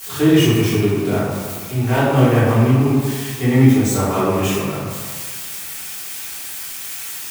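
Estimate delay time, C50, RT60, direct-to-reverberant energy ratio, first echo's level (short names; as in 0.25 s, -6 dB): none, -2.0 dB, 1.7 s, -12.0 dB, none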